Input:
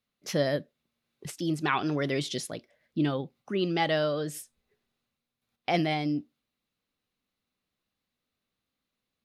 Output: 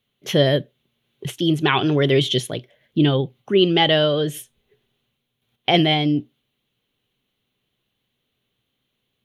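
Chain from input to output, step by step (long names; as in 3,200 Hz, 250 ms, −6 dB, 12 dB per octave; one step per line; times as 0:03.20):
thirty-one-band graphic EQ 125 Hz +11 dB, 400 Hz +7 dB, 1,250 Hz −4 dB, 3,150 Hz +12 dB, 5,000 Hz −11 dB, 8,000 Hz −8 dB
level +8 dB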